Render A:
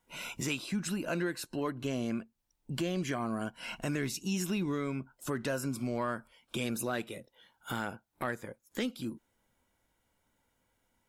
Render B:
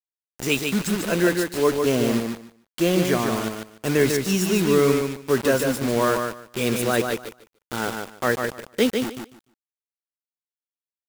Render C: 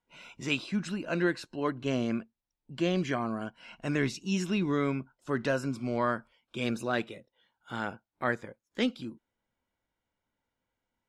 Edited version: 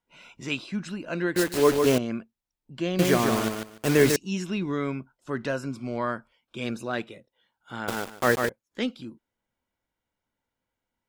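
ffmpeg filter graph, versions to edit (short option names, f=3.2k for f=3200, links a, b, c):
-filter_complex "[1:a]asplit=3[a][b][c];[2:a]asplit=4[d][e][f][g];[d]atrim=end=1.362[h];[a]atrim=start=1.358:end=1.982[i];[e]atrim=start=1.978:end=2.992[j];[b]atrim=start=2.988:end=4.162[k];[f]atrim=start=4.158:end=7.882[l];[c]atrim=start=7.878:end=8.492[m];[g]atrim=start=8.488[n];[h][i]acrossfade=d=0.004:c1=hsin:c2=hsin[o];[o][j]acrossfade=d=0.004:c1=hsin:c2=hsin[p];[p][k]acrossfade=d=0.004:c1=hsin:c2=hsin[q];[q][l]acrossfade=d=0.004:c1=hsin:c2=hsin[r];[r][m]acrossfade=d=0.004:c1=hsin:c2=hsin[s];[s][n]acrossfade=d=0.004:c1=hsin:c2=hsin"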